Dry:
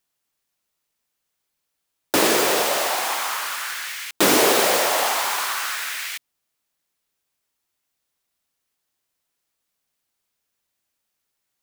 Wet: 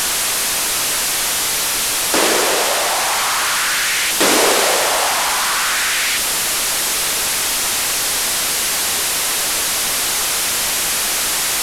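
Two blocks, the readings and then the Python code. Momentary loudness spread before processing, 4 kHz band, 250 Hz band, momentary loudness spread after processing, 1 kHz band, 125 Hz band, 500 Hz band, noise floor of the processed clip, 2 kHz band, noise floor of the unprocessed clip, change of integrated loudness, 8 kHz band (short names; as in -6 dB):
12 LU, +11.0 dB, +2.0 dB, 3 LU, +6.0 dB, +6.5 dB, +3.0 dB, -19 dBFS, +9.0 dB, -78 dBFS, +5.0 dB, +13.0 dB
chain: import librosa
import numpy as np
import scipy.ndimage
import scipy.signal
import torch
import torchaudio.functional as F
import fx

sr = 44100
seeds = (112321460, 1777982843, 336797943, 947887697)

y = fx.delta_mod(x, sr, bps=64000, step_db=-14.5)
y = fx.peak_eq(y, sr, hz=110.0, db=-7.5, octaves=2.8)
y = F.gain(torch.from_numpy(y), 4.0).numpy()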